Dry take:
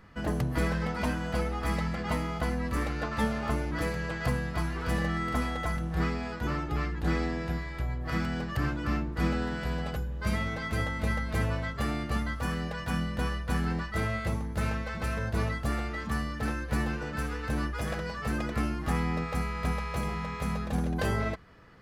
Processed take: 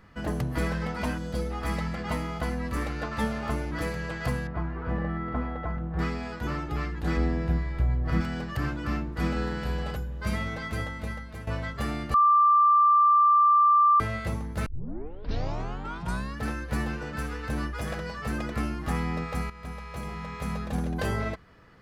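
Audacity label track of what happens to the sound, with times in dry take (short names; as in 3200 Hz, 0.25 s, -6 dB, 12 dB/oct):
1.180000	1.500000	spectral gain 610–3200 Hz -8 dB
4.470000	5.990000	LPF 1400 Hz
7.170000	8.210000	tilt -2 dB/oct
9.330000	9.950000	doubler 34 ms -5 dB
10.610000	11.470000	fade out, to -14.5 dB
12.140000	14.000000	bleep 1180 Hz -16 dBFS
14.660000	14.660000	tape start 1.75 s
19.500000	20.570000	fade in, from -12.5 dB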